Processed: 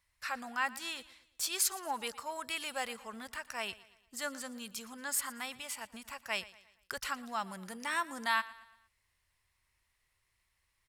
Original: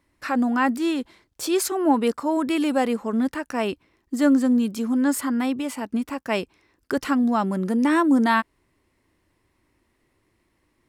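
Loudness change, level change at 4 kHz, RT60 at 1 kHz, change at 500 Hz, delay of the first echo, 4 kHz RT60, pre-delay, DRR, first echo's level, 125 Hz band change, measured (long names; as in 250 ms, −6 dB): −14.0 dB, −4.0 dB, no reverb audible, −19.5 dB, 116 ms, no reverb audible, no reverb audible, no reverb audible, −19.0 dB, can't be measured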